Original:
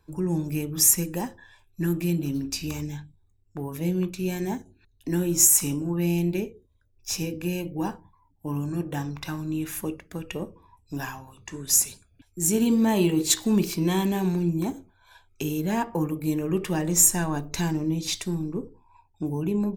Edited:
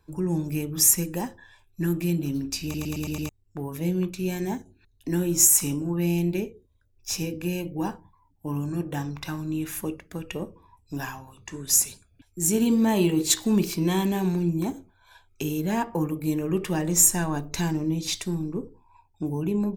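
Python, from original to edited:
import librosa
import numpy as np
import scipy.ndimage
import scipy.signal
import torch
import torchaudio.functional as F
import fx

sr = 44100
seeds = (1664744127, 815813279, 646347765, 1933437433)

y = fx.edit(x, sr, fx.stutter_over(start_s=2.63, slice_s=0.11, count=6), tone=tone)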